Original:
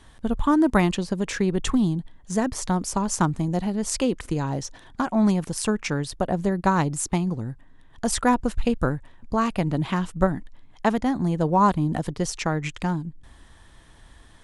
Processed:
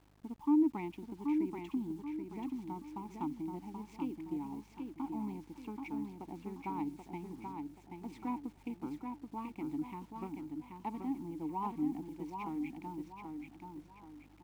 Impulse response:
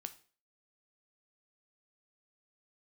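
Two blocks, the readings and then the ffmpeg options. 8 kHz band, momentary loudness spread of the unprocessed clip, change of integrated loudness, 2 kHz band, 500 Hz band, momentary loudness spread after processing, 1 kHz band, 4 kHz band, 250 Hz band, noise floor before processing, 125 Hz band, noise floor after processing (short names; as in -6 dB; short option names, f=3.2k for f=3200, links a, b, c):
under -30 dB, 9 LU, -15.5 dB, -23.5 dB, -20.0 dB, 12 LU, -17.0 dB, under -25 dB, -12.5 dB, -51 dBFS, -23.5 dB, -60 dBFS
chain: -filter_complex "[0:a]highpass=f=42:p=1,adynamicsmooth=sensitivity=7.5:basefreq=1.4k,asplit=3[a][b][c];[a]bandpass=f=300:t=q:w=8,volume=0dB[d];[b]bandpass=f=870:t=q:w=8,volume=-6dB[e];[c]bandpass=f=2.24k:t=q:w=8,volume=-9dB[f];[d][e][f]amix=inputs=3:normalize=0,aeval=exprs='val(0)+0.000891*(sin(2*PI*50*n/s)+sin(2*PI*2*50*n/s)/2+sin(2*PI*3*50*n/s)/3+sin(2*PI*4*50*n/s)/4+sin(2*PI*5*50*n/s)/5)':c=same,acrusher=bits=9:mix=0:aa=0.000001,aecho=1:1:781|1562|2343|3124|3905:0.562|0.208|0.077|0.0285|0.0105,volume=-6.5dB"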